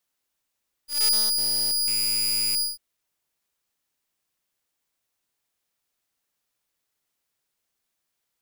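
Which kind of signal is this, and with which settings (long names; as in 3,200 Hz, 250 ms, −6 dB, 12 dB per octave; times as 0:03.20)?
note with an ADSR envelope saw 4,900 Hz, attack 171 ms, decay 297 ms, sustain −4.5 dB, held 1.73 s, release 166 ms −15 dBFS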